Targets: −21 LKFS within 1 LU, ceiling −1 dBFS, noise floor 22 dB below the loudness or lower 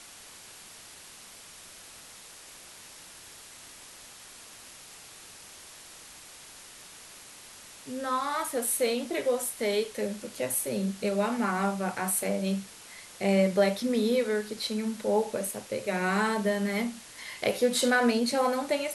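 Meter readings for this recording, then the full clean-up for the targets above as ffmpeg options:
background noise floor −49 dBFS; target noise floor −51 dBFS; integrated loudness −28.5 LKFS; sample peak −13.0 dBFS; target loudness −21.0 LKFS
→ -af "afftdn=noise_reduction=6:noise_floor=-49"
-af "volume=7.5dB"

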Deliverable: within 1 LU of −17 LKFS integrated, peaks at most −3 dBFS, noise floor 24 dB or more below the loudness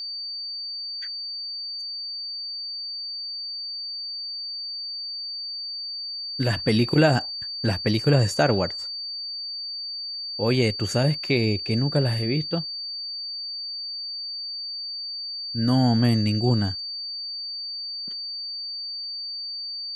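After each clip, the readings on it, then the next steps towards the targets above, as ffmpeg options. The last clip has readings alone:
interfering tone 4,600 Hz; level of the tone −30 dBFS; integrated loudness −26.0 LKFS; sample peak −6.0 dBFS; target loudness −17.0 LKFS
→ -af "bandreject=frequency=4600:width=30"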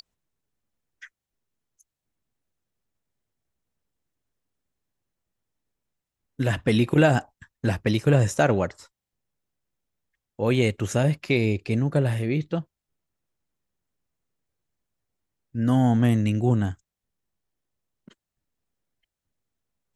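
interfering tone none found; integrated loudness −23.5 LKFS; sample peak −6.5 dBFS; target loudness −17.0 LKFS
→ -af "volume=6.5dB,alimiter=limit=-3dB:level=0:latency=1"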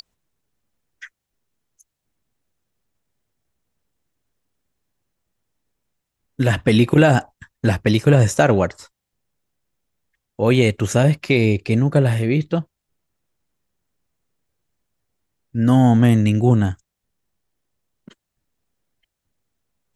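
integrated loudness −17.0 LKFS; sample peak −3.0 dBFS; background noise floor −81 dBFS

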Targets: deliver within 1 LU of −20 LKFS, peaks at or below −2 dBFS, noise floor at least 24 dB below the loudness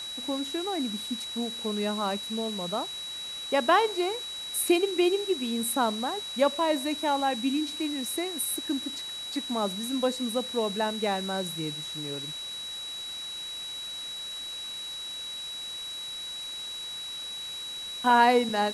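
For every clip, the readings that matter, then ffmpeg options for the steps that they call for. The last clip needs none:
interfering tone 3,900 Hz; level of the tone −35 dBFS; background noise floor −38 dBFS; target noise floor −53 dBFS; integrated loudness −29.0 LKFS; sample peak −8.5 dBFS; target loudness −20.0 LKFS
→ -af "bandreject=frequency=3900:width=30"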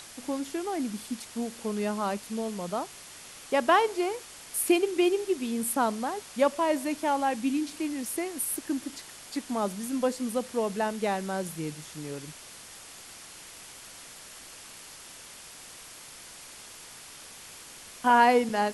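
interfering tone none found; background noise floor −47 dBFS; target noise floor −53 dBFS
→ -af "afftdn=noise_reduction=6:noise_floor=-47"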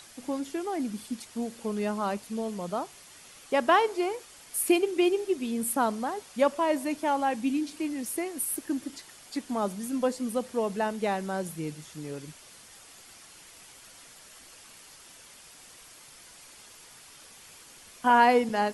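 background noise floor −52 dBFS; target noise floor −53 dBFS
→ -af "afftdn=noise_reduction=6:noise_floor=-52"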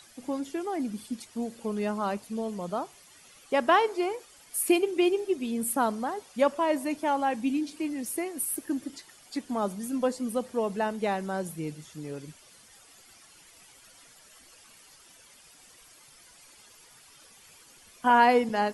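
background noise floor −55 dBFS; integrated loudness −28.5 LKFS; sample peak −8.5 dBFS; target loudness −20.0 LKFS
→ -af "volume=8.5dB,alimiter=limit=-2dB:level=0:latency=1"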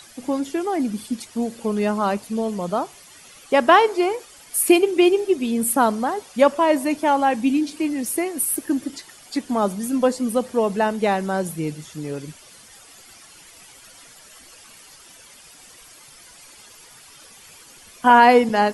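integrated loudness −20.5 LKFS; sample peak −2.0 dBFS; background noise floor −47 dBFS

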